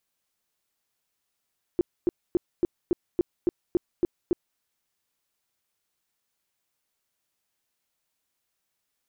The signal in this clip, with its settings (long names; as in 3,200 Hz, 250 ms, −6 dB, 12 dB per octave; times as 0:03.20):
tone bursts 350 Hz, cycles 7, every 0.28 s, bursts 10, −17.5 dBFS